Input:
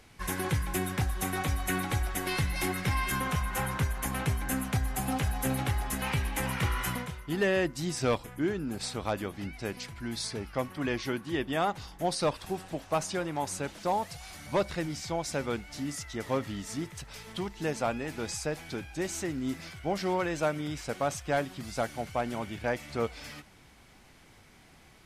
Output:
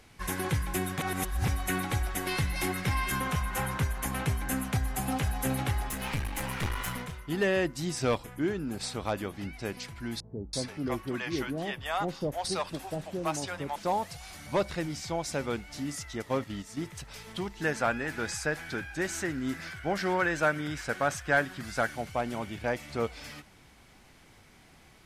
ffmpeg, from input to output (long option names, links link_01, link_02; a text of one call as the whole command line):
ffmpeg -i in.wav -filter_complex "[0:a]asettb=1/sr,asplit=3[link_01][link_02][link_03];[link_01]atrim=end=5.884[link_04];[link_02]atrim=start=5.88:end=7.19,asetpts=PTS-STARTPTS,afade=type=in:duration=0.004:curve=qsin,afade=type=out:start_time=1.306:duration=0.004:curve=qsin,aeval=exprs='clip(val(0),-1,0.0158)':channel_layout=same[link_05];[link_03]atrim=start=7.186[link_06];[link_04][link_05]acrossfade=duration=0.004:curve1=hsin:curve2=qsin[link_07];[link_07][link_06]acrossfade=duration=0.004:curve1=qsin:curve2=hsin,asettb=1/sr,asplit=3[link_08][link_09][link_10];[link_08]atrim=end=10.204[link_11];[link_09]atrim=start=10.2:end=13.76,asetpts=PTS-STARTPTS,afade=type=in:duration=0.004:curve=qsin,afade=type=out:start_time=3.556:duration=0.004:curve=qsin,acrossover=split=590[link_12][link_13];[link_13]adelay=330[link_14];[link_12][link_14]amix=inputs=2:normalize=0,atrim=end_sample=156996[link_15];[link_10]atrim=start=13.756[link_16];[link_11][link_15]acrossfade=duration=0.004:curve1=hsin:curve2=qsin[link_17];[link_17][link_16]acrossfade=duration=0.004:curve1=qsin:curve2=hsin,asettb=1/sr,asplit=3[link_18][link_19][link_20];[link_18]atrim=end=16.224[link_21];[link_19]atrim=start=16.22:end=16.85,asetpts=PTS-STARTPTS,afade=type=in:duration=0.004:curve=qsin,afade=type=out:start_time=0.626:duration=0.004:curve=qsin,agate=range=-7dB:threshold=-38dB:ratio=16:release=100:detection=peak[link_22];[link_20]atrim=start=16.846[link_23];[link_21][link_22]acrossfade=duration=0.004:curve1=hsin:curve2=qsin[link_24];[link_24][link_23]acrossfade=duration=0.004:curve1=qsin:curve2=hsin,asettb=1/sr,asplit=3[link_25][link_26][link_27];[link_25]atrim=end=17.614[link_28];[link_26]atrim=start=17.61:end=21.95,asetpts=PTS-STARTPTS,afade=type=in:duration=0.004:curve=qsin,afade=type=out:start_time=4.336:duration=0.004:curve=qsin,equalizer=frequency=1600:width=2.5:gain=11.5[link_29];[link_27]atrim=start=21.946[link_30];[link_28][link_29]acrossfade=duration=0.004:curve1=hsin:curve2=qsin[link_31];[link_31][link_30]acrossfade=duration=0.004:curve1=qsin:curve2=hsin,asplit=3[link_32][link_33][link_34];[link_32]atrim=end=0.982[link_35];[link_33]atrim=start=0.978:end=1.482,asetpts=PTS-STARTPTS,areverse[link_36];[link_34]atrim=start=1.478[link_37];[link_35][link_36]acrossfade=duration=0.004:curve1=hsin:curve2=hsin[link_38];[link_38][link_37]acrossfade=duration=0.004:curve1=hsin:curve2=hsin" out.wav